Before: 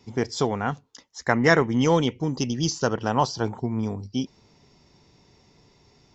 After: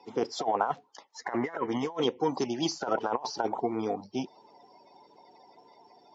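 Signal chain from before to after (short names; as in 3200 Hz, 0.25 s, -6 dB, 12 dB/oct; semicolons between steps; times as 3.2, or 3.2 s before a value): bin magnitudes rounded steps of 30 dB; bell 800 Hz +12.5 dB 1 oct; negative-ratio compressor -21 dBFS, ratio -0.5; 0.61–1.34 companded quantiser 8-bit; BPF 290–4900 Hz; gain -5 dB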